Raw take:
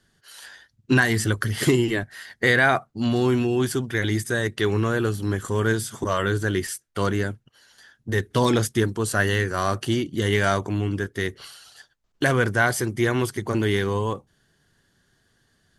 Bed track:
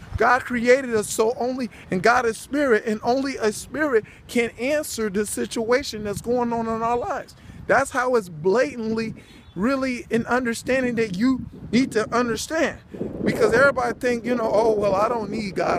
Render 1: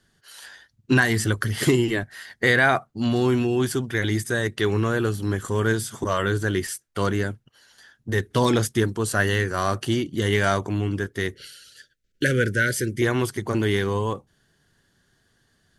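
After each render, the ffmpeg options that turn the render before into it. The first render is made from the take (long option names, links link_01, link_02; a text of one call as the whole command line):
ffmpeg -i in.wav -filter_complex "[0:a]asettb=1/sr,asplit=3[link_01][link_02][link_03];[link_01]atrim=end=11.344[link_04];[link_02]atrim=start=11.34:end=13.02,asetpts=PTS-STARTPTS,afade=type=in:duration=0.004:curve=qsin,afade=type=out:start_time=1.676:duration=0.004:curve=qsin,asuperstop=centerf=900:order=12:qfactor=1.1[link_05];[link_03]atrim=start=13.016[link_06];[link_04][link_05]acrossfade=duration=0.004:curve1=hsin:curve2=qsin[link_07];[link_07][link_06]acrossfade=duration=0.004:curve1=qsin:curve2=hsin" out.wav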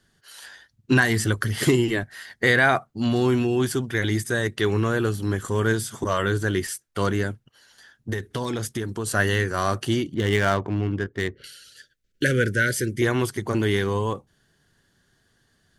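ffmpeg -i in.wav -filter_complex "[0:a]asettb=1/sr,asplit=3[link_01][link_02][link_03];[link_01]atrim=end=8.134[link_04];[link_02]atrim=start=8.13:end=9.07,asetpts=PTS-STARTPTS,afade=type=in:duration=0.004:curve=qsin,afade=type=out:start_time=0.936:duration=0.004:curve=qsin,acompressor=threshold=-24dB:ratio=5:attack=3.2:release=140:knee=1:detection=peak[link_05];[link_03]atrim=start=9.066[link_06];[link_04][link_05]acrossfade=duration=0.004:curve1=hsin:curve2=qsin[link_07];[link_07][link_06]acrossfade=duration=0.004:curve1=qsin:curve2=hsin,asettb=1/sr,asplit=3[link_08][link_09][link_10];[link_08]atrim=end=10.144[link_11];[link_09]atrim=start=10.14:end=11.44,asetpts=PTS-STARTPTS,afade=type=in:duration=0.004:curve=qsin,afade=type=out:start_time=1.296:duration=0.004:curve=qsin,adynamicsmooth=sensitivity=3.5:basefreq=1600[link_12];[link_10]atrim=start=11.436[link_13];[link_11][link_12]acrossfade=duration=0.004:curve1=hsin:curve2=qsin[link_14];[link_14][link_13]acrossfade=duration=0.004:curve1=qsin:curve2=hsin" out.wav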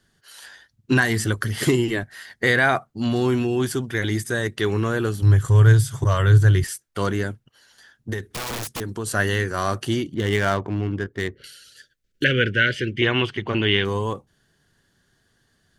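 ffmpeg -i in.wav -filter_complex "[0:a]asettb=1/sr,asplit=3[link_01][link_02][link_03];[link_01]atrim=end=5.224[link_04];[link_02]atrim=start=5.22:end=6.64,asetpts=PTS-STARTPTS,afade=type=in:duration=0.004:curve=qsin,afade=type=out:start_time=1.416:duration=0.004:curve=qsin,lowshelf=frequency=170:width_type=q:width=3:gain=9[link_05];[link_03]atrim=start=6.636[link_06];[link_04][link_05]acrossfade=duration=0.004:curve1=hsin:curve2=qsin[link_07];[link_07][link_06]acrossfade=duration=0.004:curve1=qsin:curve2=hsin,asettb=1/sr,asplit=3[link_08][link_09][link_10];[link_08]atrim=end=8.344[link_11];[link_09]atrim=start=8.34:end=8.81,asetpts=PTS-STARTPTS,afade=type=in:duration=0.004:curve=qsin,afade=type=out:start_time=0.466:duration=0.004:curve=qsin,aeval=exprs='(mod(16.8*val(0)+1,2)-1)/16.8':channel_layout=same[link_12];[link_10]atrim=start=8.806[link_13];[link_11][link_12]acrossfade=duration=0.004:curve1=hsin:curve2=qsin[link_14];[link_14][link_13]acrossfade=duration=0.004:curve1=qsin:curve2=hsin,asettb=1/sr,asplit=3[link_15][link_16][link_17];[link_15]atrim=end=12.244[link_18];[link_16]atrim=start=12.24:end=13.85,asetpts=PTS-STARTPTS,afade=type=in:duration=0.004:curve=qsin,afade=type=out:start_time=1.606:duration=0.004:curve=qsin,lowpass=frequency=2900:width_type=q:width=6.4[link_19];[link_17]atrim=start=13.846[link_20];[link_18][link_19]acrossfade=duration=0.004:curve1=hsin:curve2=qsin[link_21];[link_21][link_20]acrossfade=duration=0.004:curve1=qsin:curve2=hsin" out.wav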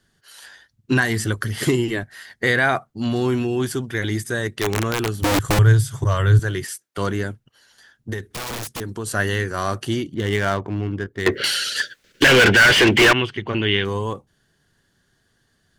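ffmpeg -i in.wav -filter_complex "[0:a]asettb=1/sr,asplit=3[link_01][link_02][link_03];[link_01]atrim=end=4.614[link_04];[link_02]atrim=start=4.61:end=5.59,asetpts=PTS-STARTPTS,afade=type=in:duration=0.004:curve=qsin,afade=type=out:start_time=0.976:duration=0.004:curve=qsin,aeval=exprs='(mod(4.73*val(0)+1,2)-1)/4.73':channel_layout=same[link_05];[link_03]atrim=start=5.586[link_06];[link_04][link_05]acrossfade=duration=0.004:curve1=hsin:curve2=qsin[link_07];[link_07][link_06]acrossfade=duration=0.004:curve1=qsin:curve2=hsin,asettb=1/sr,asplit=3[link_08][link_09][link_10];[link_08]atrim=end=6.394[link_11];[link_09]atrim=start=6.39:end=6.98,asetpts=PTS-STARTPTS,afade=type=in:duration=0.004:curve=qsin,afade=type=out:start_time=0.586:duration=0.004:curve=qsin,highpass=200[link_12];[link_10]atrim=start=6.976[link_13];[link_11][link_12]acrossfade=duration=0.004:curve1=hsin:curve2=qsin[link_14];[link_14][link_13]acrossfade=duration=0.004:curve1=qsin:curve2=hsin,asettb=1/sr,asplit=3[link_15][link_16][link_17];[link_15]atrim=end=11.264[link_18];[link_16]atrim=start=11.26:end=13.13,asetpts=PTS-STARTPTS,afade=type=in:duration=0.004:curve=qsin,afade=type=out:start_time=1.866:duration=0.004:curve=qsin,asplit=2[link_19][link_20];[link_20]highpass=frequency=720:poles=1,volume=35dB,asoftclip=type=tanh:threshold=-5dB[link_21];[link_19][link_21]amix=inputs=2:normalize=0,lowpass=frequency=3400:poles=1,volume=-6dB[link_22];[link_17]atrim=start=13.126[link_23];[link_18][link_22]acrossfade=duration=0.004:curve1=hsin:curve2=qsin[link_24];[link_24][link_23]acrossfade=duration=0.004:curve1=qsin:curve2=hsin" out.wav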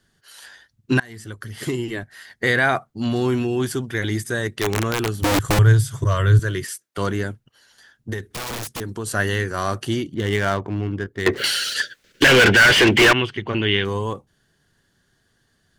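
ffmpeg -i in.wav -filter_complex "[0:a]asettb=1/sr,asplit=3[link_01][link_02][link_03];[link_01]atrim=end=5.984[link_04];[link_02]atrim=start=5.98:end=6.87,asetpts=PTS-STARTPTS,afade=type=in:duration=0.004:curve=qsin,afade=type=out:start_time=0.886:duration=0.004:curve=qsin,asuperstop=centerf=810:order=8:qfactor=4.1[link_05];[link_03]atrim=start=6.866[link_06];[link_04][link_05]acrossfade=duration=0.004:curve1=hsin:curve2=qsin[link_07];[link_07][link_06]acrossfade=duration=0.004:curve1=qsin:curve2=hsin,asplit=3[link_08][link_09][link_10];[link_08]afade=type=out:start_time=11.33:duration=0.02[link_11];[link_09]acrusher=bits=5:mix=0:aa=0.5,afade=type=in:start_time=11.33:duration=0.02,afade=type=out:start_time=11.73:duration=0.02[link_12];[link_10]afade=type=in:start_time=11.73:duration=0.02[link_13];[link_11][link_12][link_13]amix=inputs=3:normalize=0,asplit=2[link_14][link_15];[link_14]atrim=end=1,asetpts=PTS-STARTPTS,afade=type=out:start_time=0.996:duration=0.004:curve=hsin:silence=0.0668344[link_16];[link_15]atrim=start=1,asetpts=PTS-STARTPTS,afade=type=in:duration=1.57:silence=0.0668344[link_17];[link_16][link_17]concat=n=2:v=0:a=1" out.wav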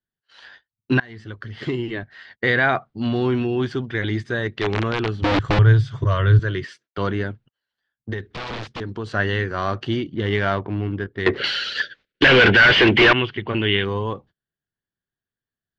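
ffmpeg -i in.wav -af "agate=range=-27dB:threshold=-45dB:ratio=16:detection=peak,lowpass=frequency=4100:width=0.5412,lowpass=frequency=4100:width=1.3066" out.wav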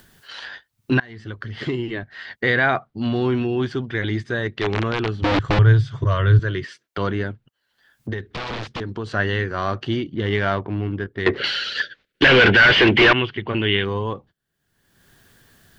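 ffmpeg -i in.wav -af "acompressor=mode=upward:threshold=-25dB:ratio=2.5" out.wav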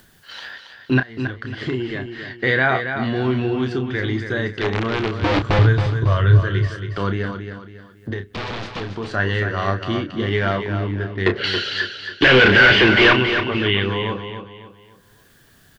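ffmpeg -i in.wav -filter_complex "[0:a]asplit=2[link_01][link_02];[link_02]adelay=31,volume=-8.5dB[link_03];[link_01][link_03]amix=inputs=2:normalize=0,aecho=1:1:275|550|825|1100:0.398|0.143|0.0516|0.0186" out.wav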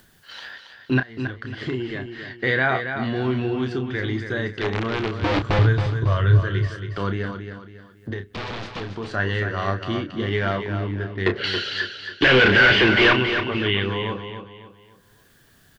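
ffmpeg -i in.wav -af "volume=-3dB" out.wav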